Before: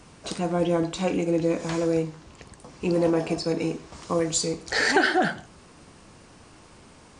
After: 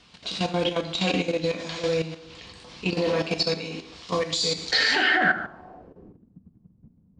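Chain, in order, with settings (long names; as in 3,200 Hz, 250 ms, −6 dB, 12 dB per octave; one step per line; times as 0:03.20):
high-shelf EQ 2,300 Hz +11.5 dB
coupled-rooms reverb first 0.73 s, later 2.7 s, from −24 dB, DRR 1 dB
output level in coarse steps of 11 dB
low-pass filter sweep 3,800 Hz → 190 Hz, 0:04.89–0:06.41
level −1.5 dB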